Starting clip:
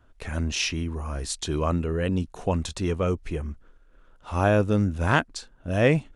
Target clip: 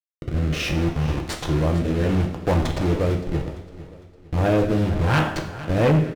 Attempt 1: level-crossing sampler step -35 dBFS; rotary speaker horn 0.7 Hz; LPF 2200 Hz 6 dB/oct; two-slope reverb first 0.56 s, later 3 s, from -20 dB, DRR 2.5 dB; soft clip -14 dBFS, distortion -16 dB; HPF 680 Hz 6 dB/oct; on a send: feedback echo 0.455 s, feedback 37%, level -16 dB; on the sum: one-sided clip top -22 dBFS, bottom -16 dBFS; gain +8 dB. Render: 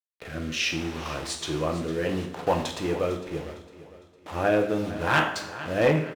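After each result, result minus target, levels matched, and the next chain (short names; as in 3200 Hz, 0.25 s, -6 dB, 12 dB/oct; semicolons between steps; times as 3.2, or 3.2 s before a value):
level-crossing sampler: distortion -11 dB; soft clip: distortion -6 dB; 500 Hz band +2.5 dB
level-crossing sampler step -24.5 dBFS; rotary speaker horn 0.7 Hz; LPF 2200 Hz 6 dB/oct; two-slope reverb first 0.56 s, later 3 s, from -20 dB, DRR 2.5 dB; soft clip -21 dBFS, distortion -10 dB; HPF 680 Hz 6 dB/oct; on a send: feedback echo 0.455 s, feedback 37%, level -16 dB; on the sum: one-sided clip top -22 dBFS, bottom -16 dBFS; gain +8 dB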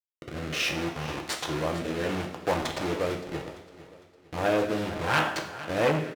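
500 Hz band +2.0 dB
level-crossing sampler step -24.5 dBFS; rotary speaker horn 0.7 Hz; LPF 2200 Hz 6 dB/oct; two-slope reverb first 0.56 s, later 3 s, from -20 dB, DRR 2.5 dB; soft clip -21 dBFS, distortion -10 dB; on a send: feedback echo 0.455 s, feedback 37%, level -16 dB; on the sum: one-sided clip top -22 dBFS, bottom -16 dBFS; gain +8 dB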